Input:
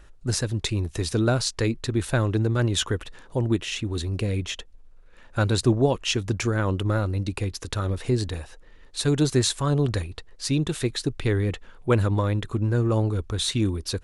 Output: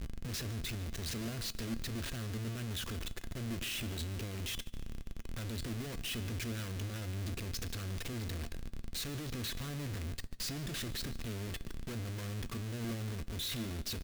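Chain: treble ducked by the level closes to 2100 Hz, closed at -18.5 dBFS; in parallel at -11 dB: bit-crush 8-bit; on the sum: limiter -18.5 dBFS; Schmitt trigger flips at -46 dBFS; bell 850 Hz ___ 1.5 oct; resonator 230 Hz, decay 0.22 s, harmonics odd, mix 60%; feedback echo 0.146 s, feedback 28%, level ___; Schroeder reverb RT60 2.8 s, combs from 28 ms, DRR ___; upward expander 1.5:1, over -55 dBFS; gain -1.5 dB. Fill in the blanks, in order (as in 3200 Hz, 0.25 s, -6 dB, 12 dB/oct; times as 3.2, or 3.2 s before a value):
-10 dB, -19.5 dB, 19.5 dB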